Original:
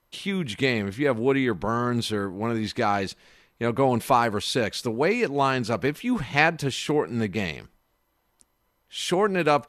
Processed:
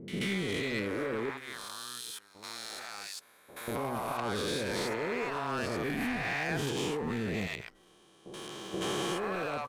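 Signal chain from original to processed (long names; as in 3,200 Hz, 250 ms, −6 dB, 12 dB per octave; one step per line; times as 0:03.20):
peak hold with a rise ahead of every peak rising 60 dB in 2.00 s
0:01.29–0:03.68: first-order pre-emphasis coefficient 0.97
hum removal 129 Hz, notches 15
dynamic equaliser 4,500 Hz, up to −4 dB, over −37 dBFS, Q 1.1
output level in coarse steps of 14 dB
leveller curve on the samples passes 1
downward compressor 2 to 1, threshold −26 dBFS, peak gain reduction 6 dB
soft clipping −22 dBFS, distortion −16 dB
multiband delay without the direct sound lows, highs 80 ms, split 670 Hz
level −3 dB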